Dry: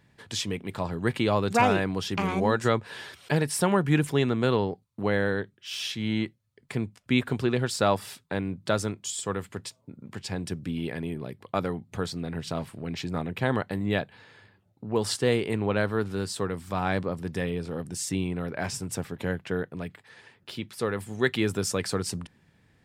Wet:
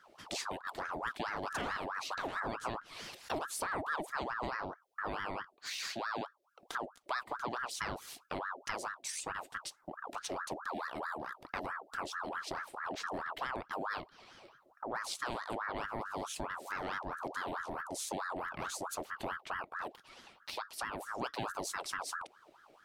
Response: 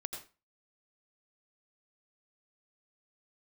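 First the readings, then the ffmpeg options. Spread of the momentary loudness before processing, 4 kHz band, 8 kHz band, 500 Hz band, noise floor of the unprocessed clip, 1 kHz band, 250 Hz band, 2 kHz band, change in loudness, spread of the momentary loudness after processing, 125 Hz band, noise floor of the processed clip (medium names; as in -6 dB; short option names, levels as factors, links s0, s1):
11 LU, -9.5 dB, -8.5 dB, -15.0 dB, -66 dBFS, -5.5 dB, -18.5 dB, -6.0 dB, -11.0 dB, 6 LU, -23.0 dB, -67 dBFS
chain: -af "equalizer=f=500:t=o:w=1:g=-5,equalizer=f=1000:t=o:w=1:g=-11,equalizer=f=2000:t=o:w=1:g=-4,equalizer=f=8000:t=o:w=1:g=-3,acompressor=threshold=0.00891:ratio=3,aeval=exprs='val(0)*sin(2*PI*990*n/s+990*0.55/4.6*sin(2*PI*4.6*n/s))':c=same,volume=1.68"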